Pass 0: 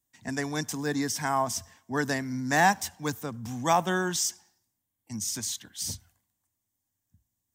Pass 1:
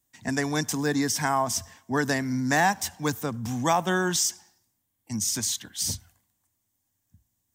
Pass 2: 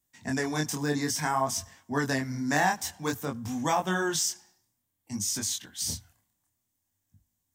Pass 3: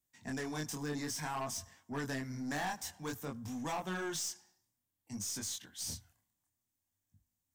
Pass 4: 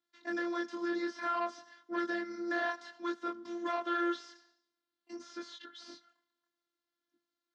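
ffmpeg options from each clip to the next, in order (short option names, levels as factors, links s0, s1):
-af "acompressor=threshold=0.0398:ratio=2,volume=1.88"
-af "flanger=delay=20:depth=7.6:speed=0.56"
-af "aeval=exprs='(tanh(20*val(0)+0.15)-tanh(0.15))/20':c=same,volume=0.447"
-filter_complex "[0:a]afftfilt=real='hypot(re,im)*cos(PI*b)':imag='0':win_size=512:overlap=0.75,acrossover=split=2500[s0][s1];[s1]acompressor=threshold=0.00355:ratio=4:attack=1:release=60[s2];[s0][s2]amix=inputs=2:normalize=0,highpass=f=220:w=0.5412,highpass=f=220:w=1.3066,equalizer=f=510:t=q:w=4:g=5,equalizer=f=810:t=q:w=4:g=-9,equalizer=f=1400:t=q:w=4:g=9,equalizer=f=2500:t=q:w=4:g=-6,equalizer=f=4200:t=q:w=4:g=4,lowpass=f=4500:w=0.5412,lowpass=f=4500:w=1.3066,volume=2.37"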